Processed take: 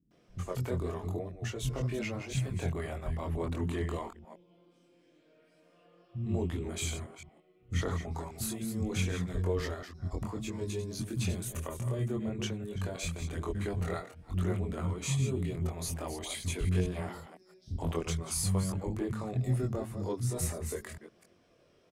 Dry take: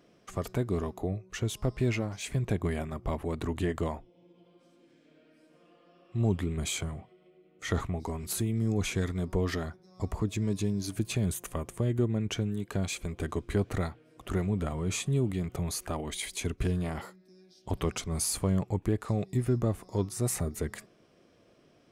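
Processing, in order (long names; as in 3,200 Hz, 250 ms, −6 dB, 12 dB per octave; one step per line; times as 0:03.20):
delay that plays each chunk backwards 169 ms, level −9 dB
multi-voice chorus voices 2, 0.45 Hz, delay 23 ms, depth 1.1 ms
multiband delay without the direct sound lows, highs 110 ms, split 230 Hz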